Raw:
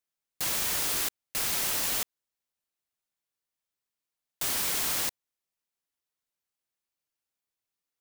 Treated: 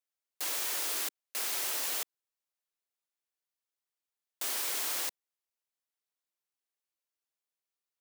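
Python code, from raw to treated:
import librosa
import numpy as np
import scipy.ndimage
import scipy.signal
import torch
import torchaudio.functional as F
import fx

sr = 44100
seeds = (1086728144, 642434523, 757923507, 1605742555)

y = scipy.signal.sosfilt(scipy.signal.butter(4, 310.0, 'highpass', fs=sr, output='sos'), x)
y = y * 10.0 ** (-4.5 / 20.0)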